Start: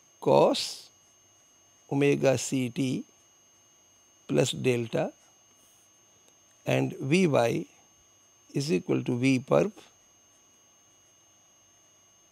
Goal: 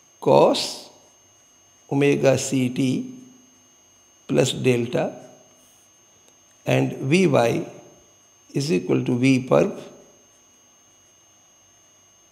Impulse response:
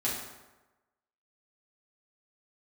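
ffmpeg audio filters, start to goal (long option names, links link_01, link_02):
-filter_complex "[0:a]asplit=2[link_01][link_02];[1:a]atrim=start_sample=2205,highshelf=frequency=8500:gain=-11.5[link_03];[link_02][link_03]afir=irnorm=-1:irlink=0,volume=-18dB[link_04];[link_01][link_04]amix=inputs=2:normalize=0,volume=5dB"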